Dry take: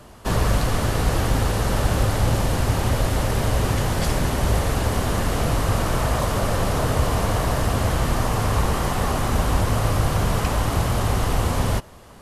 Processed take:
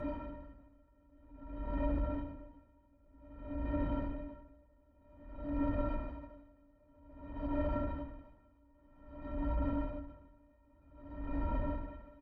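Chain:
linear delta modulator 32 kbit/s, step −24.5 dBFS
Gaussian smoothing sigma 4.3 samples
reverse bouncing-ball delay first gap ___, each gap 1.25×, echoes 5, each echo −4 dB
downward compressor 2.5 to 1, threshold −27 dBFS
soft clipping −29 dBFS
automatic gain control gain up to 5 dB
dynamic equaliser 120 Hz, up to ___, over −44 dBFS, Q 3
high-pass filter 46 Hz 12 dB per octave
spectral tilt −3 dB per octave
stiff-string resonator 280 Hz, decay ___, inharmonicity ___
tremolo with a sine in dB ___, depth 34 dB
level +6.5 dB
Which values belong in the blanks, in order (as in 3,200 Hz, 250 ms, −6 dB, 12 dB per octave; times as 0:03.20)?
70 ms, −5 dB, 0.28 s, 0.03, 0.52 Hz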